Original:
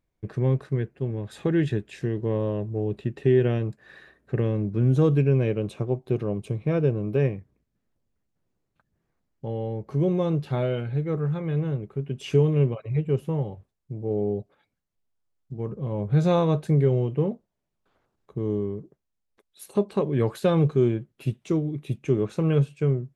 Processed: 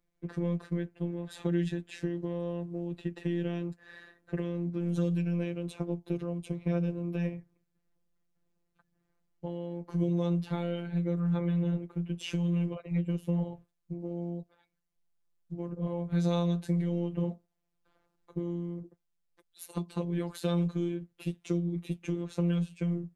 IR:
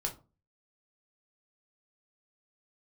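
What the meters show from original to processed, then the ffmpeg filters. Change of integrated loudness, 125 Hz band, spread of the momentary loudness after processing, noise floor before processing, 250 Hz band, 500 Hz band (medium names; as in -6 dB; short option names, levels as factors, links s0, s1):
-7.5 dB, -8.5 dB, 11 LU, -79 dBFS, -4.0 dB, -11.5 dB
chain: -filter_complex "[0:a]acrossover=split=250|920[s0][s1][s2];[s0]alimiter=limit=0.0708:level=0:latency=1:release=116[s3];[s3][s1][s2]amix=inputs=3:normalize=0,acrossover=split=160|3000[s4][s5][s6];[s5]acompressor=threshold=0.0282:ratio=5[s7];[s4][s7][s6]amix=inputs=3:normalize=0,afftfilt=real='hypot(re,im)*cos(PI*b)':imag='0':win_size=1024:overlap=0.75,volume=1.19"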